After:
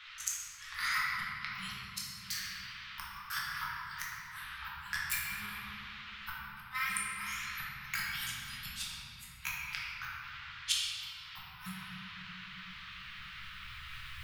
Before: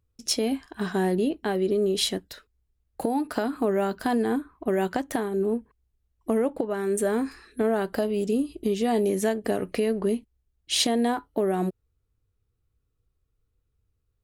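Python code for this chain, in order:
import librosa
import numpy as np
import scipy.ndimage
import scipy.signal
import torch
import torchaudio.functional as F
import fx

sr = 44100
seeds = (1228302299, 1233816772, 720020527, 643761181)

y = fx.pitch_ramps(x, sr, semitones=6.0, every_ms=530)
y = fx.recorder_agc(y, sr, target_db=-19.5, rise_db_per_s=9.6, max_gain_db=30)
y = fx.high_shelf(y, sr, hz=2400.0, db=3.5)
y = fx.dmg_noise_band(y, sr, seeds[0], low_hz=490.0, high_hz=3600.0, level_db=-54.0)
y = fx.gate_flip(y, sr, shuts_db=-17.0, range_db=-32)
y = scipy.signal.sosfilt(scipy.signal.cheby2(4, 50, [250.0, 660.0], 'bandstop', fs=sr, output='sos'), y)
y = fx.low_shelf(y, sr, hz=94.0, db=-8.0)
y = fx.hum_notches(y, sr, base_hz=50, count=4)
y = fx.room_shoebox(y, sr, seeds[1], volume_m3=180.0, walls='hard', distance_m=1.0)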